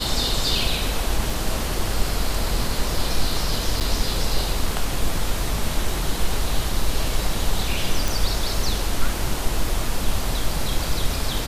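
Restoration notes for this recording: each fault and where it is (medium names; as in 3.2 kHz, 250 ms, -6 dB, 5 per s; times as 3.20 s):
1.30 s: dropout 2 ms
3.80–3.81 s: dropout 8.2 ms
8.08 s: pop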